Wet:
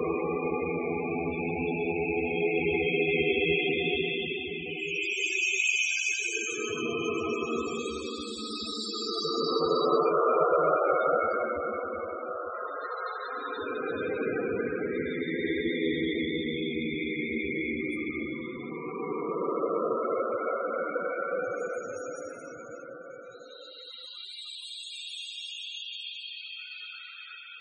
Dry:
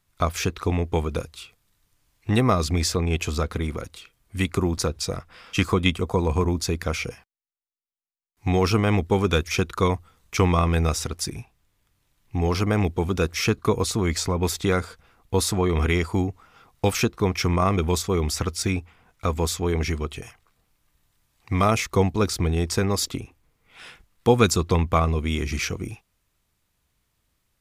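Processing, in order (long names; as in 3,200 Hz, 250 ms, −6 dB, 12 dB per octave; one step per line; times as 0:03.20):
high-pass filter 390 Hz 12 dB per octave
in parallel at −0.5 dB: downward compressor 20 to 1, threshold −31 dBFS, peak gain reduction 18 dB
on the sum: flutter between parallel walls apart 10.4 metres, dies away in 0.3 s
extreme stretch with random phases 26×, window 0.10 s, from 0:03.01
spectral peaks only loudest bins 32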